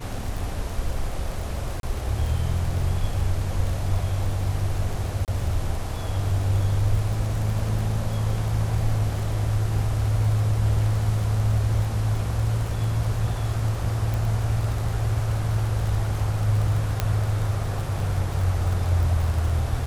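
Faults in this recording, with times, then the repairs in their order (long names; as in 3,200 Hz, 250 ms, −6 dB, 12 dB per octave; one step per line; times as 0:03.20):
surface crackle 30 per second −28 dBFS
0:01.80–0:01.83: drop-out 32 ms
0:05.25–0:05.28: drop-out 28 ms
0:14.14: click
0:17.00: click −8 dBFS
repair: click removal
repair the gap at 0:01.80, 32 ms
repair the gap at 0:05.25, 28 ms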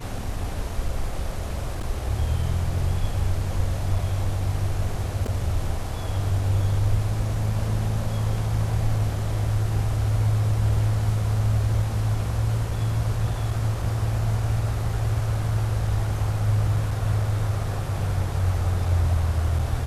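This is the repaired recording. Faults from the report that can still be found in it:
none of them is left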